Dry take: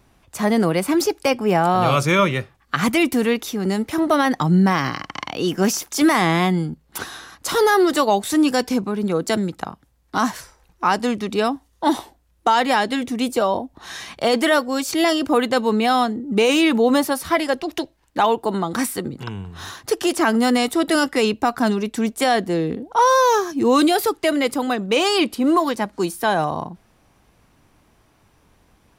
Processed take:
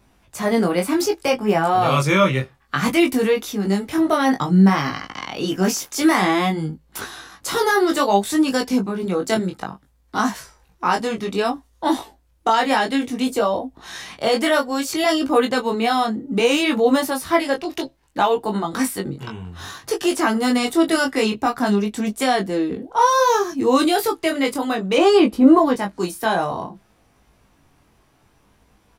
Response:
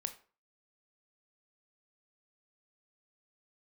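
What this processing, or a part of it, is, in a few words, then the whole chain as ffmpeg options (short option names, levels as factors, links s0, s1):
double-tracked vocal: -filter_complex "[0:a]asplit=2[s0][s1];[s1]adelay=15,volume=0.335[s2];[s0][s2]amix=inputs=2:normalize=0,flanger=delay=19:depth=3.6:speed=0.59,asettb=1/sr,asplit=3[s3][s4][s5];[s3]atrim=end=24.984[s6];[s4]atrim=start=24.98:end=25.76,asetpts=PTS-STARTPTS,afade=t=in:d=0.004:c=qsin,afade=t=out:st=0.776:d=0.004:c=qsin,tiltshelf=f=1500:g=7[s7];[s5]atrim=start=25.756[s8];[s6][s7]acrossfade=d=0.004:c1=hsin:c2=qsin[s9];[s9][s8]acrossfade=d=0.004:c1=qsin:c2=hsin,volume=1.26"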